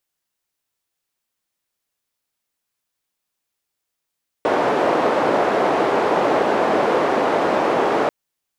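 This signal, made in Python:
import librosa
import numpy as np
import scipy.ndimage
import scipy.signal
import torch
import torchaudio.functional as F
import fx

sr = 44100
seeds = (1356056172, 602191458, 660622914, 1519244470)

y = fx.band_noise(sr, seeds[0], length_s=3.64, low_hz=430.0, high_hz=560.0, level_db=-18.0)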